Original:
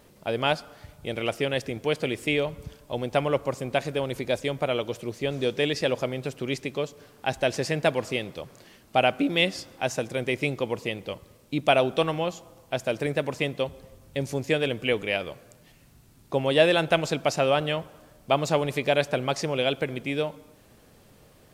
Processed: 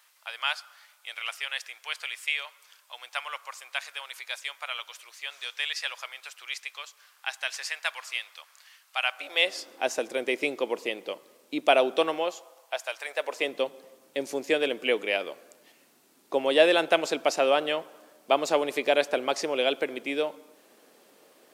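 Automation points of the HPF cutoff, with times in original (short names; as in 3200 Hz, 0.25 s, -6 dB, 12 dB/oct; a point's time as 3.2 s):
HPF 24 dB/oct
9.04 s 1100 Hz
9.7 s 290 Hz
12.1 s 290 Hz
12.99 s 890 Hz
13.54 s 280 Hz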